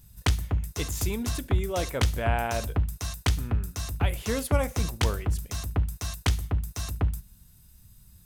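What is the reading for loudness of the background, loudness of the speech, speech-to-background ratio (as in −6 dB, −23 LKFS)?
−30.0 LKFS, −33.0 LKFS, −3.0 dB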